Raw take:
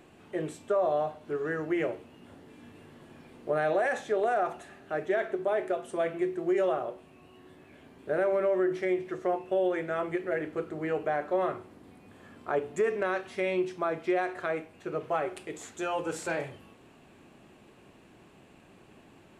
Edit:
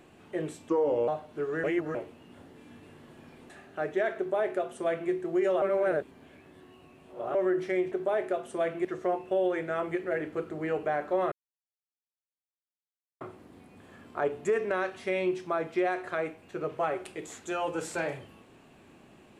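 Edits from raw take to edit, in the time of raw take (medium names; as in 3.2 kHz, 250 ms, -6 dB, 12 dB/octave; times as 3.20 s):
0.69–1.00 s: speed 80%
1.56–1.87 s: reverse
3.42–4.63 s: delete
5.31–6.24 s: copy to 9.05 s
6.75–8.48 s: reverse
11.52 s: insert silence 1.89 s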